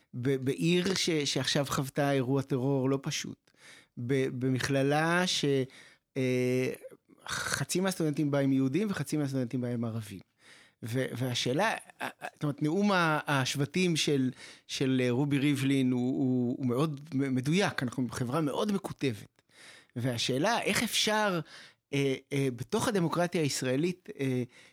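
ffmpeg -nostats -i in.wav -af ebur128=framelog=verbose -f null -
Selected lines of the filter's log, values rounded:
Integrated loudness:
  I:         -30.1 LUFS
  Threshold: -40.5 LUFS
Loudness range:
  LRA:         3.2 LU
  Threshold: -50.6 LUFS
  LRA low:   -32.4 LUFS
  LRA high:  -29.1 LUFS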